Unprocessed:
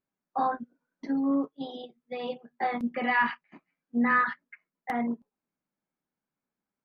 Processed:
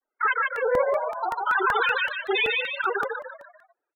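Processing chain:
low-pass filter 1,900 Hz 12 dB per octave
mains-hum notches 50/100/150/200/250/300/350/400/450 Hz
comb filter 2.3 ms, depth 31%
brickwall limiter −20.5 dBFS, peak gain reduction 6 dB
granular cloud 100 ms, grains 20 per second, pitch spread up and down by 3 semitones
on a send: echo with shifted repeats 255 ms, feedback 40%, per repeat +33 Hz, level −3 dB
on the sum: mid-hump overdrive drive 10 dB, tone 1,100 Hz, clips at −21 dBFS
spectral peaks only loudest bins 16
wrong playback speed 45 rpm record played at 78 rpm
regular buffer underruns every 0.19 s, samples 64, repeat, from 0:00.56
level +8.5 dB

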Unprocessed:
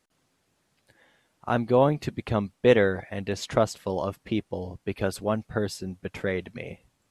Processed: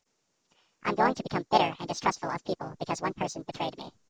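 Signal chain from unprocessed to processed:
hearing-aid frequency compression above 3,000 Hz 4 to 1
pitch-shifted copies added −7 semitones −10 dB, −3 semitones −3 dB, +4 semitones −14 dB
in parallel at −10 dB: slack as between gear wheels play −30 dBFS
on the sum: wrong playback speed 45 rpm record played at 78 rpm
level −8 dB

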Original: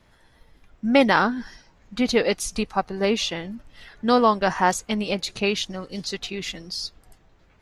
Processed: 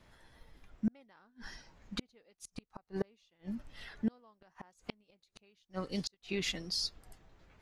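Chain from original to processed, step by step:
gate with flip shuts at −18 dBFS, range −40 dB
level −4 dB

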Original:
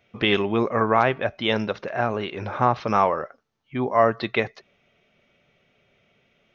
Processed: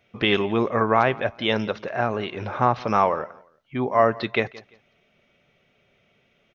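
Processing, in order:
repeating echo 172 ms, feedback 27%, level −21.5 dB

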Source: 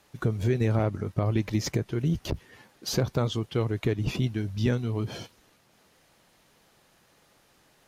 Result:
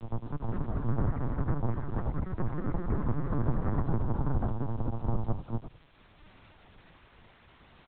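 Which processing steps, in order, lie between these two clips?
samples in bit-reversed order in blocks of 128 samples
inverse Chebyshev low-pass filter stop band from 2,500 Hz, stop band 50 dB
parametric band 420 Hz −13 dB 0.6 octaves
automatic gain control gain up to 12 dB
flanger 1.1 Hz, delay 0.4 ms, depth 5.8 ms, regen +52%
granular cloud, spray 934 ms
bit-depth reduction 10 bits, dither triangular
echo with shifted repeats 93 ms, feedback 34%, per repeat −31 Hz, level −19 dB
delay with pitch and tempo change per echo 226 ms, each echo +4 semitones, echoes 2
linear-prediction vocoder at 8 kHz pitch kept
multiband upward and downward compressor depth 40%
level −3 dB

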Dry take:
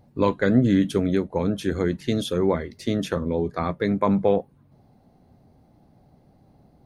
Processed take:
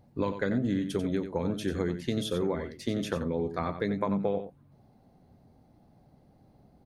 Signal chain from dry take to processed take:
downward compressor, threshold −21 dBFS, peak gain reduction 9 dB
on a send: single-tap delay 91 ms −9.5 dB
on the sum: level −4 dB

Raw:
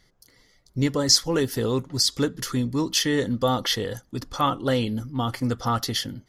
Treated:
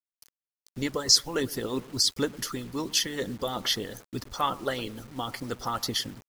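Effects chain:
bucket-brigade delay 108 ms, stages 1,024, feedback 41%, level −15.5 dB
harmonic and percussive parts rebalanced harmonic −14 dB
bit-depth reduction 8 bits, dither none
level −1.5 dB

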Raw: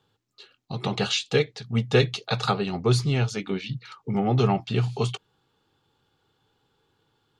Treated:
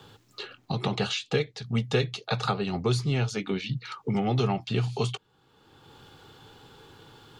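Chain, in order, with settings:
multiband upward and downward compressor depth 70%
level −3 dB

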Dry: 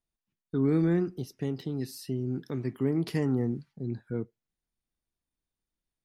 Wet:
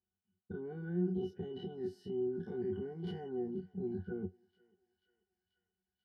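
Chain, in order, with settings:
every bin's largest magnitude spread in time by 60 ms
parametric band 120 Hz −12 dB 0.3 octaves
in parallel at +1 dB: compressor whose output falls as the input rises −34 dBFS, ratio −1
on the sum: high-pass filter 67 Hz
parametric band 300 Hz −5 dB 0.26 octaves
on a send: feedback echo with a high-pass in the loop 487 ms, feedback 76%, high-pass 950 Hz, level −23 dB
on the sum: soft clipping −17 dBFS, distortion −22 dB
resonances in every octave F#, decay 0.12 s
level −2.5 dB

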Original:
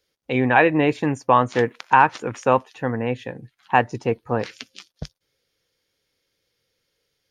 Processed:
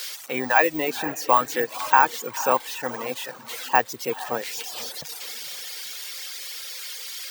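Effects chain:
spike at every zero crossing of −16 dBFS
meter weighting curve A
bad sample-rate conversion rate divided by 2×, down filtered, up zero stuff
high-shelf EQ 3,400 Hz −9.5 dB
feedback delay with all-pass diffusion 485 ms, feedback 41%, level −12 dB
reverb reduction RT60 1 s
level −1 dB

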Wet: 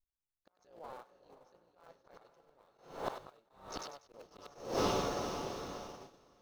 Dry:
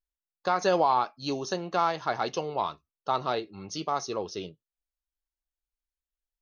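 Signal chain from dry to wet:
sub-harmonics by changed cycles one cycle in 3, muted
on a send: feedback delay with all-pass diffusion 506 ms, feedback 43%, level −5 dB
on the sum: dynamic equaliser 520 Hz, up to +8 dB, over −44 dBFS, Q 2.4
gate with flip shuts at −21 dBFS, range −33 dB
low-shelf EQ 78 Hz +11 dB
noise gate −54 dBFS, range −14 dB
feedback echo with a high-pass in the loop 97 ms, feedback 30%, high-pass 920 Hz, level −17 dB
level that may rise only so fast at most 110 dB per second
level +8 dB

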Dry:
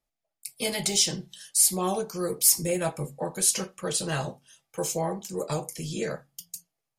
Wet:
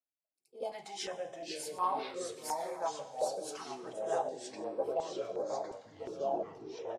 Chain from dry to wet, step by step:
turntable brake at the end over 1.60 s
backwards echo 75 ms −15 dB
envelope filter 340–1,500 Hz, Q 5.4, up, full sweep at −19 dBFS
delay with pitch and tempo change per echo 309 ms, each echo −3 semitones, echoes 3
low-shelf EQ 330 Hz −10 dB
convolution reverb RT60 1.0 s, pre-delay 99 ms, DRR 14 dB
downsampling to 32,000 Hz
notch on a step sequencer 2.8 Hz 370–6,700 Hz
level +6 dB

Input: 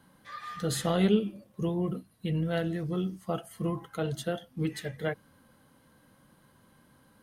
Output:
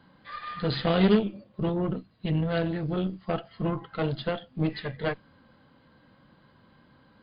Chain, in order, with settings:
harmonic generator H 8 −20 dB, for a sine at −13 dBFS
level +3.5 dB
MP3 40 kbit/s 11,025 Hz

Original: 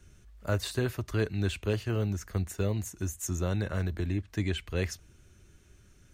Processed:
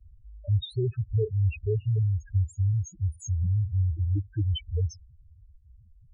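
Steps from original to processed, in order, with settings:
spectral peaks only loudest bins 2
level +8 dB

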